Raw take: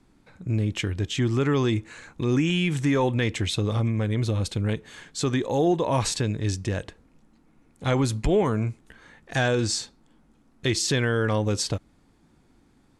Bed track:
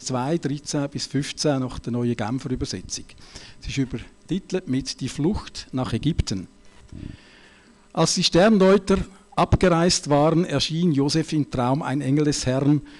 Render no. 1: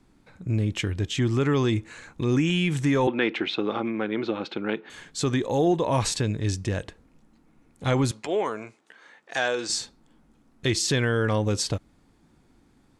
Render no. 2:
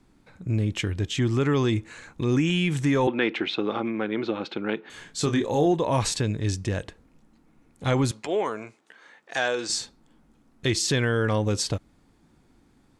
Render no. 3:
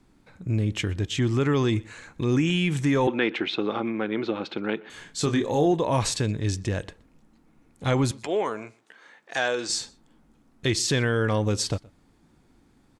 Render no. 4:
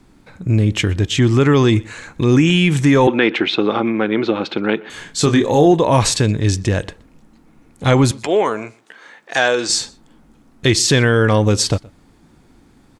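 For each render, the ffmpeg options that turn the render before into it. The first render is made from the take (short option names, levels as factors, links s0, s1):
-filter_complex "[0:a]asettb=1/sr,asplit=3[s0][s1][s2];[s0]atrim=end=3.074[s3];[s1]atrim=start=3.07:end=4.9,asetpts=PTS-STARTPTS,afade=t=in:d=0.004:c=qsin,afade=t=out:st=1.826:d=0.004:c=qsin,highpass=f=210:w=0.5412,highpass=f=210:w=1.3066,equalizer=f=350:t=q:w=4:g=7,equalizer=f=820:t=q:w=4:g=7,equalizer=f=1400:t=q:w=4:g=9,equalizer=f=2500:t=q:w=4:g=4,lowpass=f=4000:w=0.5412,lowpass=f=4000:w=1.3066[s4];[s2]atrim=start=4.896[s5];[s3][s4]acrossfade=d=0.004:c1=hsin:c2=qsin[s6];[s6][s5]acrossfade=d=0.004:c1=qsin:c2=hsin,asettb=1/sr,asplit=3[s7][s8][s9];[s7]atrim=end=8.114[s10];[s8]atrim=start=8.11:end=9.7,asetpts=PTS-STARTPTS,afade=t=in:d=0.004:c=qsin,afade=t=out:st=1.586:d=0.004:c=qsin,highpass=460,lowpass=7800[s11];[s9]atrim=start=9.696[s12];[s10][s11]acrossfade=d=0.004:c1=hsin:c2=qsin[s13];[s13][s12]acrossfade=d=0.004:c1=qsin:c2=hsin"
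-filter_complex "[0:a]asettb=1/sr,asplit=3[s0][s1][s2];[s0]atrim=end=4.924[s3];[s1]atrim=start=4.92:end=5.66,asetpts=PTS-STARTPTS,afade=t=in:d=0.004:c=qsin,afade=t=out:st=0.736:d=0.004:c=qsin,asplit=2[s4][s5];[s5]adelay=27,volume=0.447[s6];[s4][s6]amix=inputs=2:normalize=0,atrim=end_sample=32634[s7];[s2]atrim=start=5.656[s8];[s3][s7]acrossfade=d=0.004:c1=hsin:c2=qsin[s9];[s9][s8]acrossfade=d=0.004:c1=qsin:c2=hsin"
-filter_complex "[0:a]asplit=2[s0][s1];[s1]adelay=122.4,volume=0.0631,highshelf=f=4000:g=-2.76[s2];[s0][s2]amix=inputs=2:normalize=0"
-af "volume=3.16,alimiter=limit=0.794:level=0:latency=1"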